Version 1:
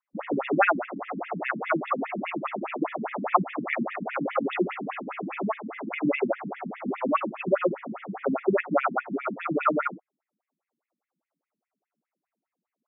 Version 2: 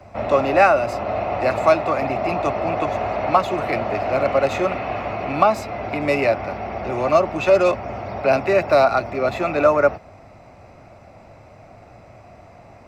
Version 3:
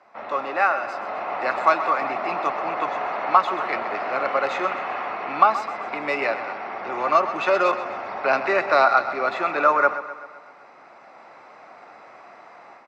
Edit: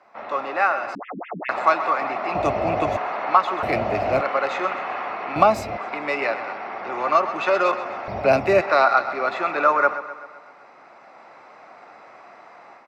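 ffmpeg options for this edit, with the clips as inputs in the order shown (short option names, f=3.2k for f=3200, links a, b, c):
-filter_complex "[1:a]asplit=4[a][b][c][d];[2:a]asplit=6[e][f][g][h][i][j];[e]atrim=end=0.952[k];[0:a]atrim=start=0.948:end=1.492[l];[f]atrim=start=1.488:end=2.352[m];[a]atrim=start=2.348:end=2.972[n];[g]atrim=start=2.968:end=3.632[o];[b]atrim=start=3.628:end=4.212[p];[h]atrim=start=4.208:end=5.362[q];[c]atrim=start=5.358:end=5.772[r];[i]atrim=start=5.768:end=8.082[s];[d]atrim=start=8.078:end=8.612[t];[j]atrim=start=8.608[u];[k][l]acrossfade=d=0.004:c1=hsin:c2=hsin[v];[v][m]acrossfade=d=0.004:c1=hsin:c2=hsin[w];[w][n]acrossfade=d=0.004:c1=hsin:c2=hsin[x];[x][o]acrossfade=d=0.004:c1=hsin:c2=hsin[y];[y][p]acrossfade=d=0.004:c1=hsin:c2=hsin[z];[z][q]acrossfade=d=0.004:c1=hsin:c2=hsin[aa];[aa][r]acrossfade=d=0.004:c1=hsin:c2=hsin[ab];[ab][s]acrossfade=d=0.004:c1=hsin:c2=hsin[ac];[ac][t]acrossfade=d=0.004:c1=hsin:c2=hsin[ad];[ad][u]acrossfade=d=0.004:c1=hsin:c2=hsin"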